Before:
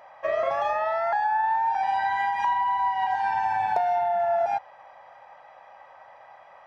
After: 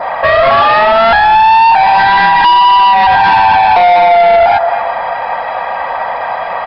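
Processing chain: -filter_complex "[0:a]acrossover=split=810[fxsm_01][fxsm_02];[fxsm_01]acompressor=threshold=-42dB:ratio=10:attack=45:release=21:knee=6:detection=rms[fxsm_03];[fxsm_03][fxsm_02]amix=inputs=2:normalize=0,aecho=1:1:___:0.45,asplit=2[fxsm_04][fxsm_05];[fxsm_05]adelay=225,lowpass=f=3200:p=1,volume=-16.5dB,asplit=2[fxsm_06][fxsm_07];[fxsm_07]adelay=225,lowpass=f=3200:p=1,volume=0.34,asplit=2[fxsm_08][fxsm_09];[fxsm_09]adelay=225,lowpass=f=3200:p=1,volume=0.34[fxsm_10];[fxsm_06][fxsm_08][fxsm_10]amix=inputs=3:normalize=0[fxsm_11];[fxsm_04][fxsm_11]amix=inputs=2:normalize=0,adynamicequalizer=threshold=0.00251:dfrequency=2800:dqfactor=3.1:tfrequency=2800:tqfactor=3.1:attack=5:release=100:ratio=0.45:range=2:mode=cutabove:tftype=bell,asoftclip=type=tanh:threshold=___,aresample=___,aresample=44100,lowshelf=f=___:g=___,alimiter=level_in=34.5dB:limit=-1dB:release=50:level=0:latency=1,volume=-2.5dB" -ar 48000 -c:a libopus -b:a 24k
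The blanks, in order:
4.3, -28.5dB, 11025, 150, 3.5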